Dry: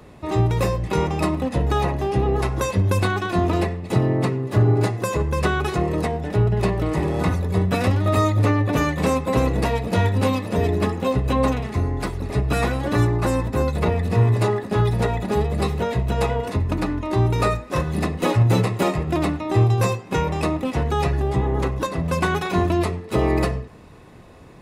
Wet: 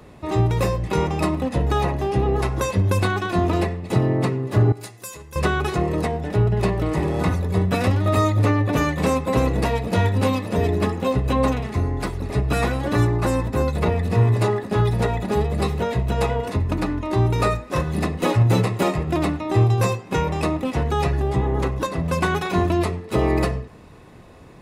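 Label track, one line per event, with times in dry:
4.720000	5.360000	pre-emphasis filter coefficient 0.9

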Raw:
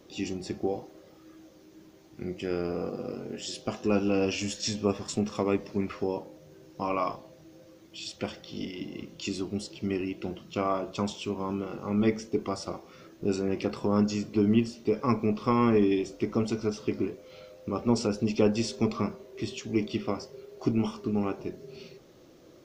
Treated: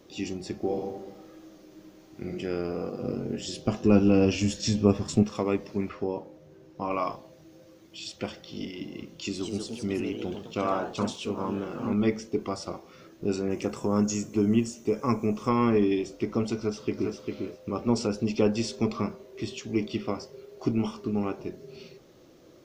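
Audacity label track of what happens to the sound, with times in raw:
0.560000	2.330000	reverb throw, RT60 1.1 s, DRR 0.5 dB
3.020000	5.230000	bass shelf 300 Hz +11.5 dB
5.890000	6.910000	treble shelf 3.2 kHz -9.5 dB
9.170000	12.030000	ever faster or slower copies 217 ms, each echo +2 st, echoes 2, each echo -6 dB
13.500000	15.490000	resonant high shelf 5.5 kHz +6.5 dB, Q 3
16.570000	17.160000	echo throw 400 ms, feedback 15%, level -4.5 dB

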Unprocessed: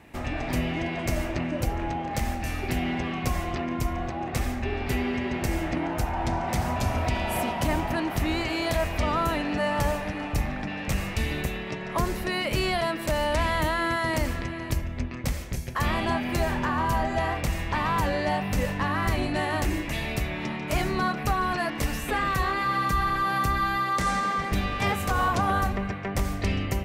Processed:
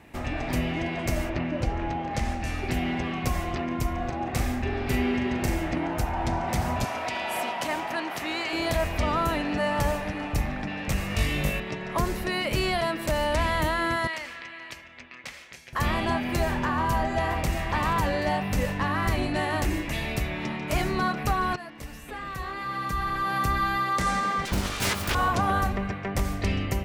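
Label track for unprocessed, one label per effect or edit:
1.290000	2.720000	low-pass 4.1 kHz -> 10 kHz
3.960000	5.540000	doubling 40 ms -7 dB
6.850000	8.530000	frequency weighting A
11.080000	11.600000	flutter echo walls apart 3.4 m, dies away in 0.45 s
14.070000	15.730000	band-pass filter 2.5 kHz, Q 0.91
16.910000	17.540000	echo throw 390 ms, feedback 35%, level -8 dB
21.560000	23.520000	fade in quadratic, from -13 dB
24.450000	25.150000	self-modulated delay depth 0.89 ms

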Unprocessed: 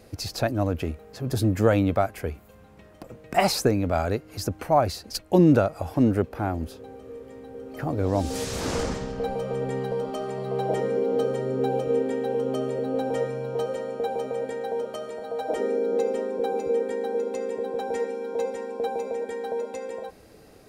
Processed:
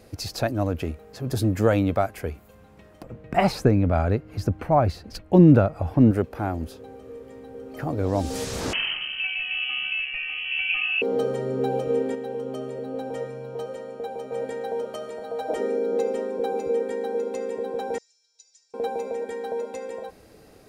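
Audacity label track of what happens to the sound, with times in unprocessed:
3.040000	6.110000	tone controls bass +7 dB, treble -12 dB
8.730000	11.020000	frequency inversion carrier 3.1 kHz
12.150000	14.320000	gain -5 dB
17.980000	18.740000	Butterworth band-pass 5.7 kHz, Q 2.5

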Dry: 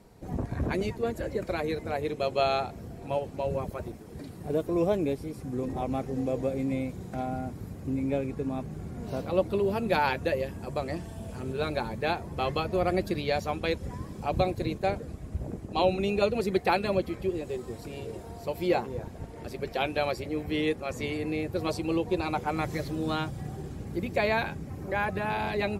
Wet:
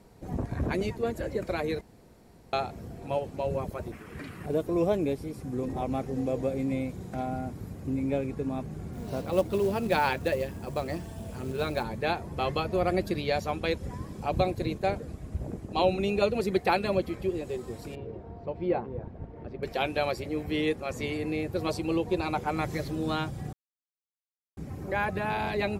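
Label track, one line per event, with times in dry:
1.810000	2.530000	room tone
3.920000	4.460000	high-order bell 1.8 kHz +12.5 dB
8.930000	11.840000	companded quantiser 6-bit
17.950000	19.630000	tape spacing loss at 10 kHz 43 dB
23.530000	24.570000	mute

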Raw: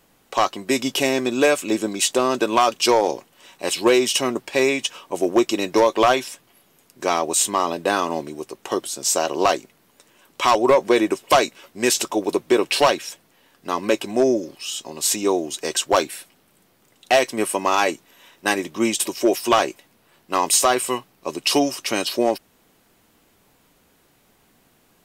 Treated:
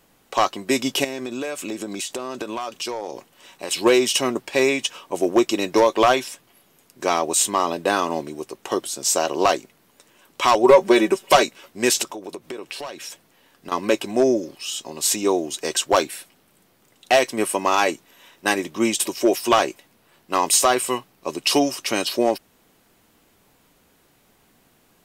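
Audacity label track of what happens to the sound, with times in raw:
1.040000	3.710000	compression 8:1, threshold -25 dBFS
10.630000	11.430000	comb 5.2 ms
12.030000	13.720000	compression 8:1, threshold -30 dBFS

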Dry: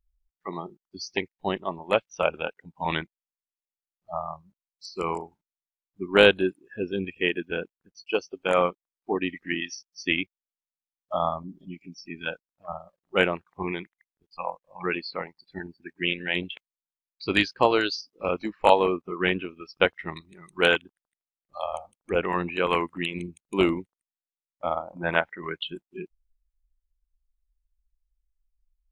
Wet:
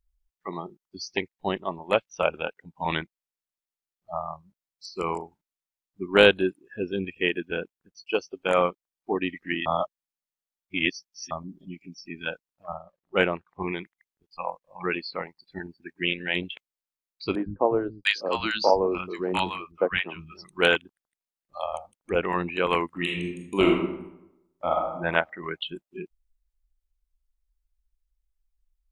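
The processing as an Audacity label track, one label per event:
9.660000	11.310000	reverse
12.750000	13.620000	treble shelf 6.1 kHz -12 dB
17.350000	20.450000	three bands offset in time mids, lows, highs 110/700 ms, splits 200/1000 Hz
22.920000	24.940000	reverb throw, RT60 0.87 s, DRR 0.5 dB

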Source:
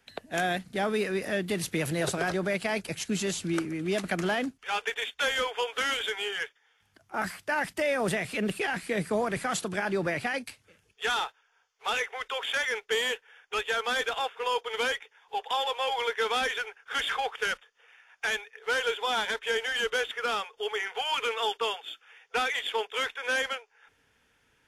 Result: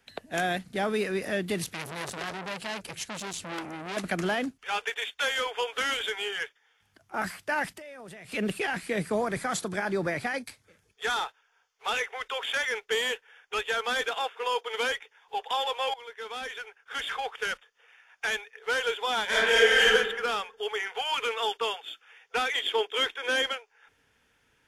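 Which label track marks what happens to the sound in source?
1.640000	3.970000	transformer saturation saturates under 3.6 kHz
4.840000	5.460000	bass shelf 290 Hz -8.5 dB
7.700000	8.320000	compression 8:1, threshold -42 dBFS
9.220000	11.260000	peaking EQ 2.8 kHz -9 dB 0.23 oct
14.080000	14.890000	high-pass 200 Hz
15.940000	18.510000	fade in equal-power, from -18 dB
19.270000	19.920000	reverb throw, RT60 1 s, DRR -9.5 dB
22.530000	23.520000	small resonant body resonances 340/3200 Hz, height 10 dB, ringing for 25 ms

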